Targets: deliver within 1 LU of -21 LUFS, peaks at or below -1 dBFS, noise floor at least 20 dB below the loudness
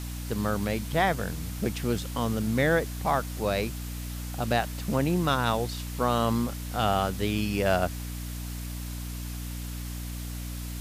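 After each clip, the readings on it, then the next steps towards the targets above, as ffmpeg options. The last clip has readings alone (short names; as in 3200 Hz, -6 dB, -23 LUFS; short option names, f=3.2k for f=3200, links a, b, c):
hum 60 Hz; harmonics up to 300 Hz; hum level -33 dBFS; noise floor -36 dBFS; noise floor target -49 dBFS; loudness -29.0 LUFS; peak -11.5 dBFS; loudness target -21.0 LUFS
-> -af "bandreject=f=60:t=h:w=6,bandreject=f=120:t=h:w=6,bandreject=f=180:t=h:w=6,bandreject=f=240:t=h:w=6,bandreject=f=300:t=h:w=6"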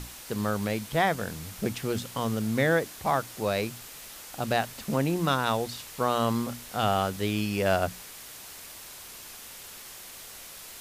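hum none; noise floor -45 dBFS; noise floor target -49 dBFS
-> -af "afftdn=nr=6:nf=-45"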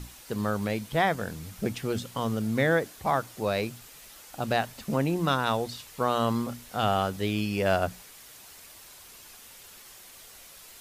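noise floor -50 dBFS; loudness -28.5 LUFS; peak -12.0 dBFS; loudness target -21.0 LUFS
-> -af "volume=7.5dB"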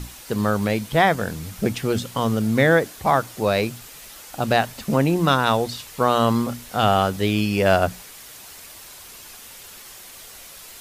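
loudness -21.0 LUFS; peak -4.5 dBFS; noise floor -42 dBFS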